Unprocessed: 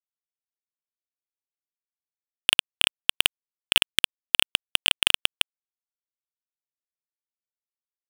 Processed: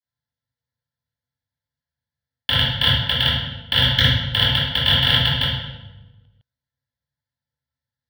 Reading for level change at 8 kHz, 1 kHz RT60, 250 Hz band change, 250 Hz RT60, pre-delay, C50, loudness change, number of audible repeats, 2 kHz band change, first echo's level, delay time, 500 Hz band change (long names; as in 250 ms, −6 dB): below −10 dB, 0.95 s, +16.0 dB, 1.2 s, 3 ms, 0.5 dB, +4.5 dB, no echo audible, +3.5 dB, no echo audible, no echo audible, +9.5 dB